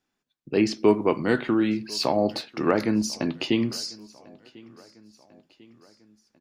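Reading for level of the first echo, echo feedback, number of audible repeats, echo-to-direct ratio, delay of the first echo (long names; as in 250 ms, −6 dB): −24.0 dB, 54%, 3, −22.5 dB, 1,046 ms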